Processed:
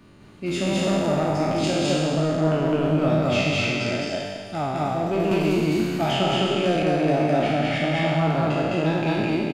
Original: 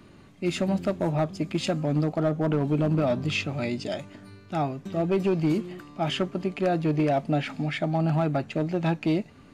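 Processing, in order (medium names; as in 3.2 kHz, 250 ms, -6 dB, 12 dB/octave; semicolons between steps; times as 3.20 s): spectral sustain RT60 1.97 s; loudspeakers at several distances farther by 72 m 0 dB, 83 m -10 dB; 5.31–6.83 s: three bands compressed up and down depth 70%; trim -2.5 dB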